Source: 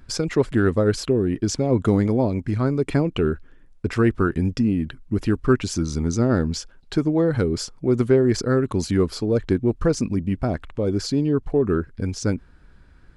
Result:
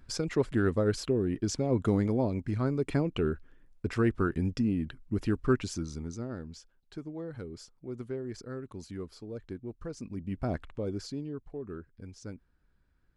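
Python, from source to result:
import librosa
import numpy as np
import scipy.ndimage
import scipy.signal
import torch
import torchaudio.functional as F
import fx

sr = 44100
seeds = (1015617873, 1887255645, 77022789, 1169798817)

y = fx.gain(x, sr, db=fx.line((5.58, -8.0), (6.36, -20.0), (9.92, -20.0), (10.55, -7.0), (11.46, -20.0)))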